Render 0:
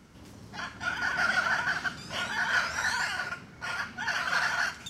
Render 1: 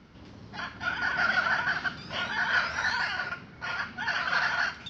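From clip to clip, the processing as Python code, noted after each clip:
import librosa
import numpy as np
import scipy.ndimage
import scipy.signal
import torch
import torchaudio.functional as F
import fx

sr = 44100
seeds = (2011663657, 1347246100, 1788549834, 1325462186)

y = scipy.signal.sosfilt(scipy.signal.butter(6, 5200.0, 'lowpass', fs=sr, output='sos'), x)
y = y * librosa.db_to_amplitude(1.0)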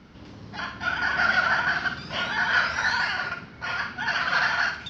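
y = fx.room_flutter(x, sr, wall_m=9.3, rt60_s=0.36)
y = y * librosa.db_to_amplitude(3.5)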